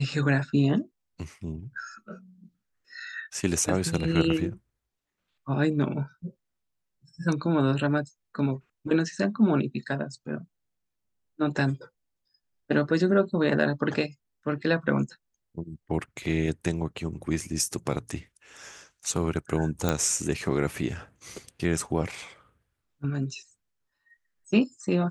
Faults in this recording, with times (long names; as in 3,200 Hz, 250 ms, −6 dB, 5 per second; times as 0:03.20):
0:19.89: click −10 dBFS